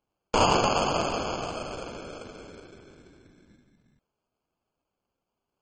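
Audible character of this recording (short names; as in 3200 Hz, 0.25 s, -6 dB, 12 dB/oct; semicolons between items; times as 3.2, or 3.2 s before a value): aliases and images of a low sample rate 1900 Hz, jitter 0%; MP3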